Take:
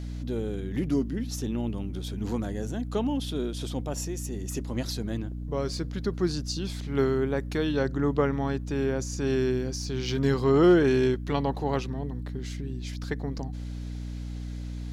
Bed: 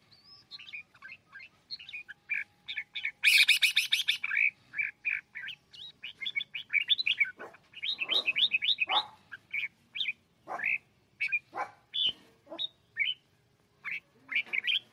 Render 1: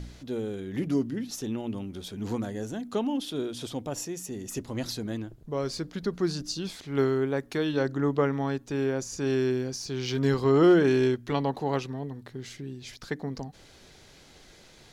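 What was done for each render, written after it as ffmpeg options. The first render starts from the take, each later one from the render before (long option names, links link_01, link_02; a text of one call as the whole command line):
ffmpeg -i in.wav -af "bandreject=frequency=60:width_type=h:width=4,bandreject=frequency=120:width_type=h:width=4,bandreject=frequency=180:width_type=h:width=4,bandreject=frequency=240:width_type=h:width=4,bandreject=frequency=300:width_type=h:width=4" out.wav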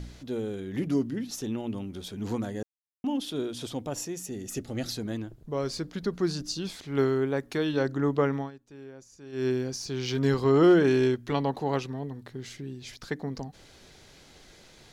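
ffmpeg -i in.wav -filter_complex "[0:a]asettb=1/sr,asplit=3[link_01][link_02][link_03];[link_01]atrim=end=4.244[link_04];[link_02]atrim=start=4.24:end=4.94,asetpts=PTS-STARTPTS,afade=type=in:duration=0.004:curve=qsin,afade=type=out:start_time=0.696:duration=0.004:curve=qsin,asuperstop=centerf=1000:order=4:qfactor=4.2[link_05];[link_03]atrim=start=4.936[link_06];[link_04][link_05]acrossfade=duration=0.004:curve1=hsin:curve2=qsin[link_07];[link_07][link_06]acrossfade=duration=0.004:curve1=qsin:curve2=hsin,asplit=5[link_08][link_09][link_10][link_11][link_12];[link_08]atrim=end=2.63,asetpts=PTS-STARTPTS,afade=type=out:start_time=2.626:duration=0.004:curve=hsin[link_13];[link_09]atrim=start=2.63:end=3.04,asetpts=PTS-STARTPTS,volume=0[link_14];[link_10]atrim=start=3.04:end=8.51,asetpts=PTS-STARTPTS,afade=type=in:duration=0.004:curve=hsin,afade=type=out:start_time=5.32:duration=0.15:silence=0.133352[link_15];[link_11]atrim=start=8.51:end=9.32,asetpts=PTS-STARTPTS,volume=-17.5dB[link_16];[link_12]atrim=start=9.32,asetpts=PTS-STARTPTS,afade=type=in:duration=0.15:silence=0.133352[link_17];[link_13][link_14][link_15][link_16][link_17]concat=n=5:v=0:a=1" out.wav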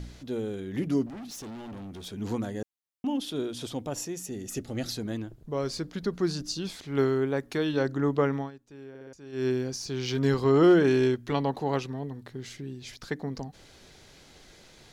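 ffmpeg -i in.wav -filter_complex "[0:a]asettb=1/sr,asplit=3[link_01][link_02][link_03];[link_01]atrim=end=1.064[link_04];[link_02]atrim=start=1.06:end=2.06,asetpts=PTS-STARTPTS,afade=type=in:duration=0.004:curve=qsin,afade=type=out:start_time=0.996:duration=0.004:curve=qsin,asoftclip=type=hard:threshold=-38.5dB[link_05];[link_03]atrim=start=2.056[link_06];[link_04][link_05]acrossfade=duration=0.004:curve1=hsin:curve2=qsin[link_07];[link_07][link_06]acrossfade=duration=0.004:curve1=qsin:curve2=hsin,asplit=5[link_08][link_09][link_10][link_11][link_12];[link_08]atrim=end=8.952[link_13];[link_09]atrim=start=8.888:end=8.952[link_14];[link_10]atrim=start=8.888:end=8.952[link_15];[link_11]atrim=start=8.888:end=8.952[link_16];[link_12]atrim=start=9.128[link_17];[link_13][link_14]acrossfade=duration=0.004:curve1=hsin:curve2=hsin[link_18];[link_18][link_15]acrossfade=duration=0.004:curve1=hsin:curve2=hsin[link_19];[link_19][link_16]acrossfade=duration=0.004:curve1=hsin:curve2=hsin[link_20];[link_20][link_17]acrossfade=duration=0.004:curve1=hsin:curve2=hsin" out.wav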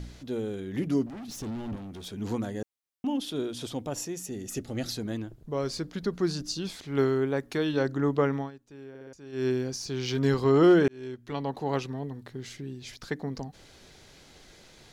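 ffmpeg -i in.wav -filter_complex "[0:a]asettb=1/sr,asplit=3[link_01][link_02][link_03];[link_01]atrim=end=1.284[link_04];[link_02]atrim=start=1.28:end=1.76,asetpts=PTS-STARTPTS,afade=type=in:duration=0.004:curve=qsin,afade=type=out:start_time=0.476:duration=0.004:curve=qsin,lowshelf=frequency=240:gain=11.5[link_05];[link_03]atrim=start=1.756[link_06];[link_04][link_05]acrossfade=duration=0.004:curve1=hsin:curve2=qsin[link_07];[link_07][link_06]acrossfade=duration=0.004:curve1=qsin:curve2=hsin,asplit=2[link_08][link_09];[link_08]atrim=end=10.88,asetpts=PTS-STARTPTS,afade=type=out:start_time=10.876:duration=0.004:curve=hsin[link_10];[link_09]atrim=start=10.88,asetpts=PTS-STARTPTS,afade=type=in:duration=0.93[link_11];[link_10][link_11]concat=n=2:v=0:a=1" out.wav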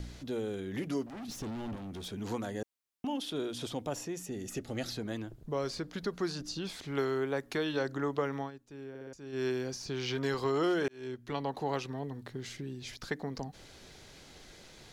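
ffmpeg -i in.wav -filter_complex "[0:a]acrossover=split=440|3500[link_01][link_02][link_03];[link_01]acompressor=threshold=-38dB:ratio=4[link_04];[link_02]acompressor=threshold=-31dB:ratio=4[link_05];[link_03]acompressor=threshold=-45dB:ratio=4[link_06];[link_04][link_05][link_06]amix=inputs=3:normalize=0" out.wav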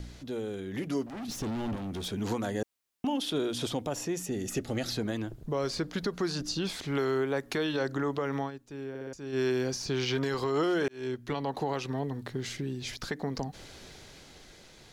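ffmpeg -i in.wav -af "dynaudnorm=framelen=170:gausssize=13:maxgain=6dB,alimiter=limit=-21dB:level=0:latency=1:release=130" out.wav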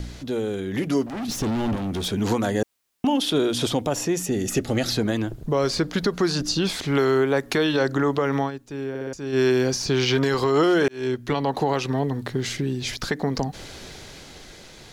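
ffmpeg -i in.wav -af "volume=9dB" out.wav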